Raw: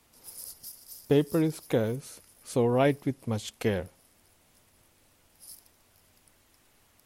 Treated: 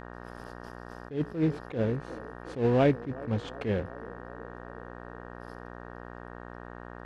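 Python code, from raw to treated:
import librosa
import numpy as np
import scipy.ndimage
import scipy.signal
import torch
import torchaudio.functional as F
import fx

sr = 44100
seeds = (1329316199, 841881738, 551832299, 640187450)

p1 = fx.sample_hold(x, sr, seeds[0], rate_hz=2200.0, jitter_pct=20)
p2 = x + (p1 * librosa.db_to_amplitude(-9.0))
p3 = scipy.signal.sosfilt(scipy.signal.butter(2, 2800.0, 'lowpass', fs=sr, output='sos'), p2)
p4 = p3 + fx.echo_banded(p3, sr, ms=369, feedback_pct=74, hz=470.0, wet_db=-20, dry=0)
p5 = fx.dmg_buzz(p4, sr, base_hz=60.0, harmonics=31, level_db=-44.0, tilt_db=-2, odd_only=False)
p6 = fx.dynamic_eq(p5, sr, hz=1000.0, q=0.71, threshold_db=-34.0, ratio=4.0, max_db=-3)
y = fx.attack_slew(p6, sr, db_per_s=170.0)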